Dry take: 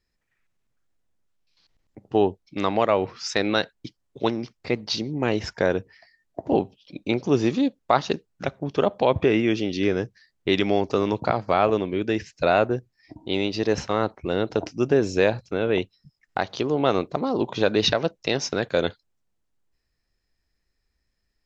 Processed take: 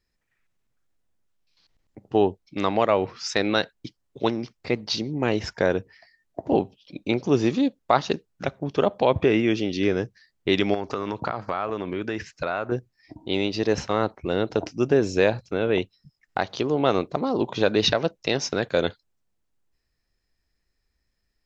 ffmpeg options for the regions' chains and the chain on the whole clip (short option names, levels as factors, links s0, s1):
-filter_complex "[0:a]asettb=1/sr,asplit=3[s0][s1][s2];[s0]atrim=end=10.744[s3];[s1]atrim=start=10.74:end=12.72,asetpts=PTS-STARTPTS,afade=t=in:d=0.004:c=qsin,afade=t=out:st=1.976:d=0.004:c=qsin,equalizer=f=1300:t=o:w=1.1:g=8.5,acompressor=threshold=0.0631:ratio=4:attack=3.2:release=140:knee=1:detection=peak[s4];[s2]atrim=start=12.716[s5];[s3][s4]acrossfade=d=0.004:c1=hsin:c2=qsin[s6];[s6][s5]acrossfade=d=0.004:c1=qsin:c2=hsin"